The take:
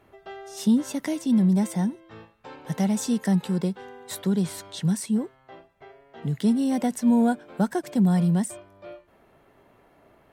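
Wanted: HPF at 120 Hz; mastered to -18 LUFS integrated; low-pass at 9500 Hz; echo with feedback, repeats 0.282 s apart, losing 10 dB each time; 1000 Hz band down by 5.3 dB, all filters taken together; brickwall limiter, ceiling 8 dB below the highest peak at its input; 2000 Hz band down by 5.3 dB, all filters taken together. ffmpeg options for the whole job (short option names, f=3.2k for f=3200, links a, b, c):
-af "highpass=120,lowpass=9.5k,equalizer=f=1k:t=o:g=-7.5,equalizer=f=2k:t=o:g=-4,alimiter=limit=-20.5dB:level=0:latency=1,aecho=1:1:282|564|846|1128:0.316|0.101|0.0324|0.0104,volume=11.5dB"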